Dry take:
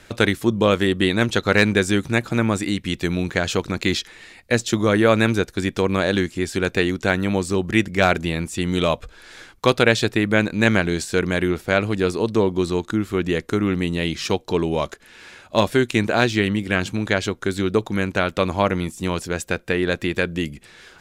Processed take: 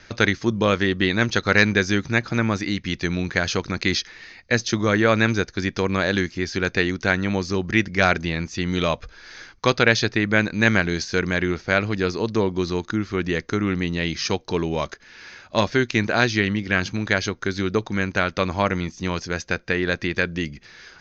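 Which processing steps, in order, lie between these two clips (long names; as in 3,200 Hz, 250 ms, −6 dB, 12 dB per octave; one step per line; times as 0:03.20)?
Chebyshev low-pass with heavy ripple 6,500 Hz, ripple 6 dB
bass and treble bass +3 dB, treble +6 dB
level +2 dB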